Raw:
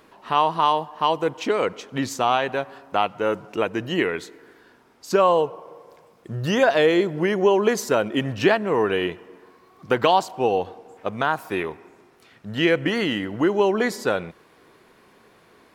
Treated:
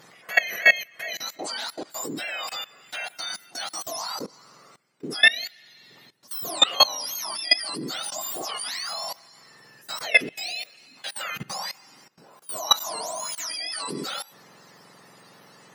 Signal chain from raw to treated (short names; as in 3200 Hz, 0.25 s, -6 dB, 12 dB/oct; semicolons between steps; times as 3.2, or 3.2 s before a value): spectrum mirrored in octaves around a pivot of 1400 Hz; HPF 290 Hz 6 dB/oct; level quantiser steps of 20 dB; gain +8 dB